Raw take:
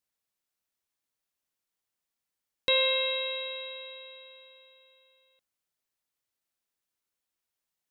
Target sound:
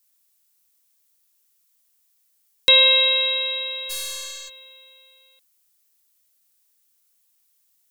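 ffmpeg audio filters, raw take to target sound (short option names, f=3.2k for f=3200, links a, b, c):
-filter_complex "[0:a]asplit=3[a][b][c];[a]afade=t=out:st=3.89:d=0.02[d];[b]aeval=exprs='0.0188*(cos(1*acos(clip(val(0)/0.0188,-1,1)))-cos(1*PI/2))+0.00422*(cos(4*acos(clip(val(0)/0.0188,-1,1)))-cos(4*PI/2))+0.00376*(cos(8*acos(clip(val(0)/0.0188,-1,1)))-cos(8*PI/2))':c=same,afade=t=in:st=3.89:d=0.02,afade=t=out:st=4.48:d=0.02[e];[c]afade=t=in:st=4.48:d=0.02[f];[d][e][f]amix=inputs=3:normalize=0,crystalizer=i=4.5:c=0,volume=4dB"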